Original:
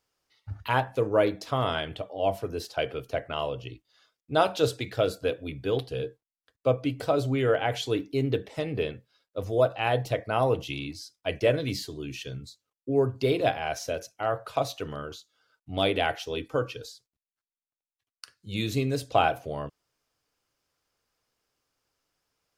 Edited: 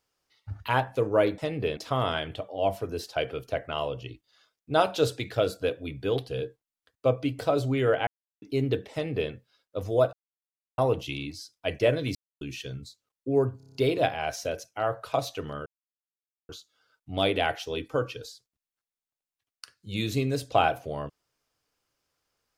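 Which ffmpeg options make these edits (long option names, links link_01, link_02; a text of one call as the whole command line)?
ffmpeg -i in.wav -filter_complex "[0:a]asplit=16[link_01][link_02][link_03][link_04][link_05][link_06][link_07][link_08][link_09][link_10][link_11][link_12][link_13][link_14][link_15][link_16];[link_01]atrim=end=1.382[link_17];[link_02]atrim=start=8.528:end=8.922[link_18];[link_03]atrim=start=1.378:end=7.68,asetpts=PTS-STARTPTS,afade=type=out:start_time=6.298:duration=0.004:curve=hsin[link_19];[link_04]atrim=start=7.68:end=8.03,asetpts=PTS-STARTPTS,volume=0[link_20];[link_05]atrim=start=8.03:end=9.74,asetpts=PTS-STARTPTS,afade=type=in:duration=0.004:curve=hsin,afade=type=out:start_time=1.706:duration=0.004:curve=hsin[link_21];[link_06]atrim=start=9.74:end=10.39,asetpts=PTS-STARTPTS,volume=0[link_22];[link_07]atrim=start=10.39:end=11.76,asetpts=PTS-STARTPTS,afade=type=in:duration=0.004:curve=hsin,afade=type=out:start_time=1.366:duration=0.004:curve=hsin[link_23];[link_08]atrim=start=11.76:end=12.02,asetpts=PTS-STARTPTS,volume=0[link_24];[link_09]atrim=start=12.02:end=13.212,asetpts=PTS-STARTPTS,afade=type=in:duration=0.004:curve=hsin[link_25];[link_10]atrim=start=13.178:end=13.212[link_26];[link_11]atrim=start=13.178:end=13.212[link_27];[link_12]atrim=start=13.178:end=13.212[link_28];[link_13]atrim=start=13.178:end=13.212[link_29];[link_14]atrim=start=13.178:end=13.212[link_30];[link_15]atrim=start=13.178:end=15.09,asetpts=PTS-STARTPTS,afade=type=out:start_time=1.908:duration=0.004:curve=hsin,apad=pad_dur=0.83[link_31];[link_16]atrim=start=15.09,asetpts=PTS-STARTPTS,afade=type=in:duration=0.004:curve=hsin[link_32];[link_17][link_18]acrossfade=duration=0.004:curve1=hsin:curve2=hsin[link_33];[link_19][link_20][link_21][link_22][link_23][link_24][link_25]concat=n=7:v=0:a=1[link_34];[link_33][link_34]acrossfade=duration=0.004:curve1=hsin:curve2=hsin[link_35];[link_35][link_26]acrossfade=duration=0.004:curve1=hsin:curve2=hsin[link_36];[link_36][link_27]acrossfade=duration=0.004:curve1=hsin:curve2=hsin[link_37];[link_37][link_28]acrossfade=duration=0.004:curve1=hsin:curve2=hsin[link_38];[link_38][link_29]acrossfade=duration=0.004:curve1=hsin:curve2=hsin[link_39];[link_39][link_30]acrossfade=duration=0.004:curve1=hsin:curve2=hsin[link_40];[link_31][link_32]concat=n=2:v=0:a=1[link_41];[link_40][link_41]acrossfade=duration=0.004:curve1=hsin:curve2=hsin" out.wav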